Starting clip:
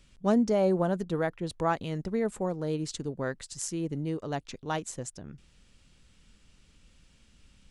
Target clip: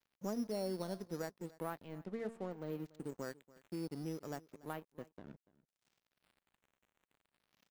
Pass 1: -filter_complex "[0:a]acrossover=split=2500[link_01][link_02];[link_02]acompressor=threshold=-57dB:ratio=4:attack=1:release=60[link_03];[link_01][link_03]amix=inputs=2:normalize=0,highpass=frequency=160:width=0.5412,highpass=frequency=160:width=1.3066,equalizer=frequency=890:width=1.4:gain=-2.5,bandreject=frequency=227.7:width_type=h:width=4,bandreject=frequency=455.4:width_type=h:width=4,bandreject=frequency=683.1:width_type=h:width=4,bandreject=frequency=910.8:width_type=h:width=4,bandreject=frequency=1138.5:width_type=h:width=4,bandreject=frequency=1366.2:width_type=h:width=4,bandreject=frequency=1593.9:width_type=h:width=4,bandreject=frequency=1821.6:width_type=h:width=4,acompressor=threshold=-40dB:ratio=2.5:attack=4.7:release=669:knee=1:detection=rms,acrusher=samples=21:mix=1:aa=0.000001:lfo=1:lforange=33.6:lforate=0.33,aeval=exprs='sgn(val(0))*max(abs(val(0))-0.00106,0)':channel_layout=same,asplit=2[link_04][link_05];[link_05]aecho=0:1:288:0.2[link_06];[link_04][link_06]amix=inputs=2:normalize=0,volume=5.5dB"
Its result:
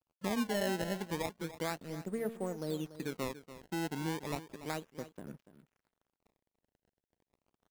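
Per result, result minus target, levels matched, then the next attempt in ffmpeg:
sample-and-hold swept by an LFO: distortion +13 dB; downward compressor: peak gain reduction −5 dB; echo-to-direct +7 dB
-filter_complex "[0:a]acrossover=split=2500[link_01][link_02];[link_02]acompressor=threshold=-57dB:ratio=4:attack=1:release=60[link_03];[link_01][link_03]amix=inputs=2:normalize=0,highpass=frequency=160:width=0.5412,highpass=frequency=160:width=1.3066,equalizer=frequency=890:width=1.4:gain=-2.5,bandreject=frequency=227.7:width_type=h:width=4,bandreject=frequency=455.4:width_type=h:width=4,bandreject=frequency=683.1:width_type=h:width=4,bandreject=frequency=910.8:width_type=h:width=4,bandreject=frequency=1138.5:width_type=h:width=4,bandreject=frequency=1366.2:width_type=h:width=4,bandreject=frequency=1593.9:width_type=h:width=4,bandreject=frequency=1821.6:width_type=h:width=4,acompressor=threshold=-40dB:ratio=2.5:attack=4.7:release=669:knee=1:detection=rms,acrusher=samples=5:mix=1:aa=0.000001:lfo=1:lforange=8:lforate=0.33,aeval=exprs='sgn(val(0))*max(abs(val(0))-0.00106,0)':channel_layout=same,asplit=2[link_04][link_05];[link_05]aecho=0:1:288:0.2[link_06];[link_04][link_06]amix=inputs=2:normalize=0,volume=5.5dB"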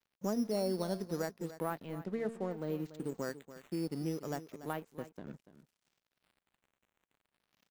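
downward compressor: peak gain reduction −5 dB; echo-to-direct +7 dB
-filter_complex "[0:a]acrossover=split=2500[link_01][link_02];[link_02]acompressor=threshold=-57dB:ratio=4:attack=1:release=60[link_03];[link_01][link_03]amix=inputs=2:normalize=0,highpass=frequency=160:width=0.5412,highpass=frequency=160:width=1.3066,equalizer=frequency=890:width=1.4:gain=-2.5,bandreject=frequency=227.7:width_type=h:width=4,bandreject=frequency=455.4:width_type=h:width=4,bandreject=frequency=683.1:width_type=h:width=4,bandreject=frequency=910.8:width_type=h:width=4,bandreject=frequency=1138.5:width_type=h:width=4,bandreject=frequency=1366.2:width_type=h:width=4,bandreject=frequency=1593.9:width_type=h:width=4,bandreject=frequency=1821.6:width_type=h:width=4,acompressor=threshold=-48dB:ratio=2.5:attack=4.7:release=669:knee=1:detection=rms,acrusher=samples=5:mix=1:aa=0.000001:lfo=1:lforange=8:lforate=0.33,aeval=exprs='sgn(val(0))*max(abs(val(0))-0.00106,0)':channel_layout=same,asplit=2[link_04][link_05];[link_05]aecho=0:1:288:0.2[link_06];[link_04][link_06]amix=inputs=2:normalize=0,volume=5.5dB"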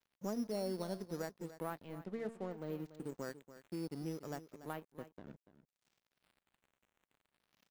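echo-to-direct +7 dB
-filter_complex "[0:a]acrossover=split=2500[link_01][link_02];[link_02]acompressor=threshold=-57dB:ratio=4:attack=1:release=60[link_03];[link_01][link_03]amix=inputs=2:normalize=0,highpass=frequency=160:width=0.5412,highpass=frequency=160:width=1.3066,equalizer=frequency=890:width=1.4:gain=-2.5,bandreject=frequency=227.7:width_type=h:width=4,bandreject=frequency=455.4:width_type=h:width=4,bandreject=frequency=683.1:width_type=h:width=4,bandreject=frequency=910.8:width_type=h:width=4,bandreject=frequency=1138.5:width_type=h:width=4,bandreject=frequency=1366.2:width_type=h:width=4,bandreject=frequency=1593.9:width_type=h:width=4,bandreject=frequency=1821.6:width_type=h:width=4,acompressor=threshold=-48dB:ratio=2.5:attack=4.7:release=669:knee=1:detection=rms,acrusher=samples=5:mix=1:aa=0.000001:lfo=1:lforange=8:lforate=0.33,aeval=exprs='sgn(val(0))*max(abs(val(0))-0.00106,0)':channel_layout=same,asplit=2[link_04][link_05];[link_05]aecho=0:1:288:0.0891[link_06];[link_04][link_06]amix=inputs=2:normalize=0,volume=5.5dB"

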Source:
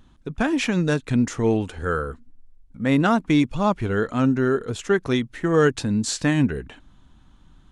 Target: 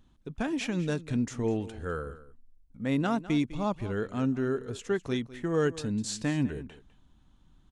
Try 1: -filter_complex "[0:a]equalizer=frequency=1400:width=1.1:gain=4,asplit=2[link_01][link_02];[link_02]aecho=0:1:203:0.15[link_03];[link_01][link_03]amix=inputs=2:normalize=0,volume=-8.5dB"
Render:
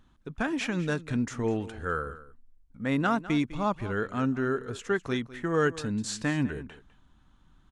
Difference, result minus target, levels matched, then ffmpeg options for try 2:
1,000 Hz band +4.0 dB
-filter_complex "[0:a]equalizer=frequency=1400:width=1.1:gain=-3.5,asplit=2[link_01][link_02];[link_02]aecho=0:1:203:0.15[link_03];[link_01][link_03]amix=inputs=2:normalize=0,volume=-8.5dB"

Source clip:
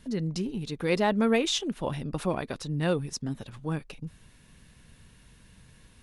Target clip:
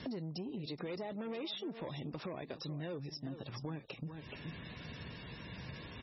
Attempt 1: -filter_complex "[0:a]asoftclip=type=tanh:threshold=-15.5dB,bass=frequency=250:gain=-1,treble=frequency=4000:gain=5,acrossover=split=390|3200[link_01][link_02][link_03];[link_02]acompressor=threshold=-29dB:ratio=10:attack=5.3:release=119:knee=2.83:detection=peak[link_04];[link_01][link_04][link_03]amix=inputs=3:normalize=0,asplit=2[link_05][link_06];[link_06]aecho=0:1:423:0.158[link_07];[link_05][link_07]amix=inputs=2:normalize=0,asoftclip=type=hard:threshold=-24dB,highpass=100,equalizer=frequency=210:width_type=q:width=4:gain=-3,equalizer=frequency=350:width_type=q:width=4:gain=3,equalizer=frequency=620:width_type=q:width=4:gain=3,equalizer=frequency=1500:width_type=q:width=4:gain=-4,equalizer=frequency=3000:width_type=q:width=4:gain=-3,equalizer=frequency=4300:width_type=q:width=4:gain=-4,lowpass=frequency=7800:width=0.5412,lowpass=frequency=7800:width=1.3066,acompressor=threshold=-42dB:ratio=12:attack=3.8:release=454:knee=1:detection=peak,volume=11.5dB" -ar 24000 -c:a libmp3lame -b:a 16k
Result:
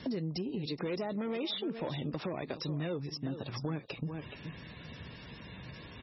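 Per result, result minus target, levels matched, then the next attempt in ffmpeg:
soft clipping: distortion −11 dB; downward compressor: peak gain reduction −4 dB
-filter_complex "[0:a]asoftclip=type=tanh:threshold=-26dB,bass=frequency=250:gain=-1,treble=frequency=4000:gain=5,acrossover=split=390|3200[link_01][link_02][link_03];[link_02]acompressor=threshold=-29dB:ratio=10:attack=5.3:release=119:knee=2.83:detection=peak[link_04];[link_01][link_04][link_03]amix=inputs=3:normalize=0,asplit=2[link_05][link_06];[link_06]aecho=0:1:423:0.158[link_07];[link_05][link_07]amix=inputs=2:normalize=0,asoftclip=type=hard:threshold=-24dB,highpass=100,equalizer=frequency=210:width_type=q:width=4:gain=-3,equalizer=frequency=350:width_type=q:width=4:gain=3,equalizer=frequency=620:width_type=q:width=4:gain=3,equalizer=frequency=1500:width_type=q:width=4:gain=-4,equalizer=frequency=3000:width_type=q:width=4:gain=-3,equalizer=frequency=4300:width_type=q:width=4:gain=-4,lowpass=frequency=7800:width=0.5412,lowpass=frequency=7800:width=1.3066,acompressor=threshold=-42dB:ratio=12:attack=3.8:release=454:knee=1:detection=peak,volume=11.5dB" -ar 24000 -c:a libmp3lame -b:a 16k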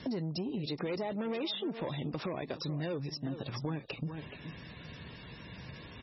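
downward compressor: peak gain reduction −6 dB
-filter_complex "[0:a]asoftclip=type=tanh:threshold=-26dB,bass=frequency=250:gain=-1,treble=frequency=4000:gain=5,acrossover=split=390|3200[link_01][link_02][link_03];[link_02]acompressor=threshold=-29dB:ratio=10:attack=5.3:release=119:knee=2.83:detection=peak[link_04];[link_01][link_04][link_03]amix=inputs=3:normalize=0,asplit=2[link_05][link_06];[link_06]aecho=0:1:423:0.158[link_07];[link_05][link_07]amix=inputs=2:normalize=0,asoftclip=type=hard:threshold=-24dB,highpass=100,equalizer=frequency=210:width_type=q:width=4:gain=-3,equalizer=frequency=350:width_type=q:width=4:gain=3,equalizer=frequency=620:width_type=q:width=4:gain=3,equalizer=frequency=1500:width_type=q:width=4:gain=-4,equalizer=frequency=3000:width_type=q:width=4:gain=-3,equalizer=frequency=4300:width_type=q:width=4:gain=-4,lowpass=frequency=7800:width=0.5412,lowpass=frequency=7800:width=1.3066,acompressor=threshold=-48.5dB:ratio=12:attack=3.8:release=454:knee=1:detection=peak,volume=11.5dB" -ar 24000 -c:a libmp3lame -b:a 16k

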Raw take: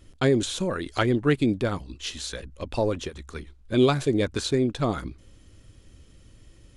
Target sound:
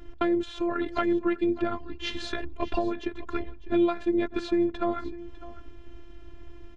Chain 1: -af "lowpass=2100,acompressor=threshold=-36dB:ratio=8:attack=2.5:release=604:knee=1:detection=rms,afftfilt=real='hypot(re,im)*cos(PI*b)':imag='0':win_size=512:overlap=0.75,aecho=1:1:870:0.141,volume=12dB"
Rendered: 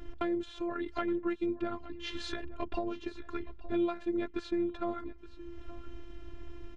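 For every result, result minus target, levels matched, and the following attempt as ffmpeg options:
echo 268 ms late; downward compressor: peak gain reduction +7.5 dB
-af "lowpass=2100,acompressor=threshold=-36dB:ratio=8:attack=2.5:release=604:knee=1:detection=rms,afftfilt=real='hypot(re,im)*cos(PI*b)':imag='0':win_size=512:overlap=0.75,aecho=1:1:602:0.141,volume=12dB"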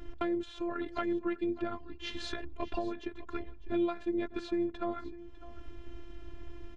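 downward compressor: peak gain reduction +7.5 dB
-af "lowpass=2100,acompressor=threshold=-27.5dB:ratio=8:attack=2.5:release=604:knee=1:detection=rms,afftfilt=real='hypot(re,im)*cos(PI*b)':imag='0':win_size=512:overlap=0.75,aecho=1:1:602:0.141,volume=12dB"

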